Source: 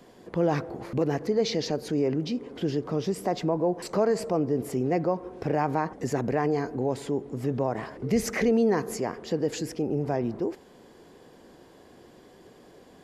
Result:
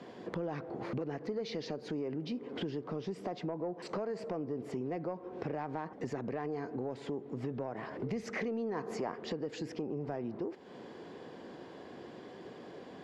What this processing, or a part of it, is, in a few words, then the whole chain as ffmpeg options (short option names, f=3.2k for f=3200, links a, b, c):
AM radio: -filter_complex "[0:a]highpass=120,lowpass=4k,acompressor=threshold=-39dB:ratio=5,asoftclip=type=tanh:threshold=-29.5dB,asettb=1/sr,asplit=3[a][b][c];[a]atrim=end=8.754[d];[b]atrim=start=8.75:end=9.16,asetpts=PTS-STARTPTS,afade=t=in:d=0.004:c=qsin,afade=t=out:st=0.406:d=0.004:c=qsin,equalizer=f=910:w=1:g=5.5[e];[c]atrim=start=9.156[f];[d][e]acrossfade=d=0.004:c1=hsin:c2=qsin[g];[g][f]acrossfade=d=0.004:c1=qsin:c2=hsin,volume=4dB"